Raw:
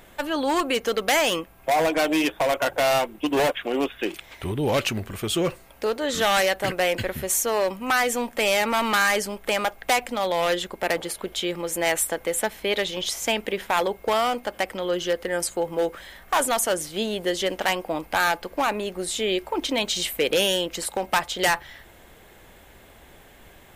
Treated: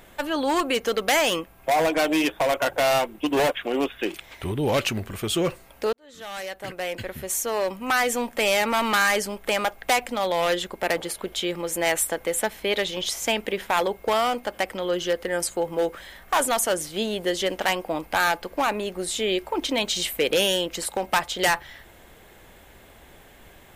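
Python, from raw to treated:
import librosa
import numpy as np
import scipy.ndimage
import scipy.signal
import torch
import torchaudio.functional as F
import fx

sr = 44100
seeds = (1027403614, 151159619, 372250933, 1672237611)

y = fx.edit(x, sr, fx.fade_in_span(start_s=5.93, length_s=2.15), tone=tone)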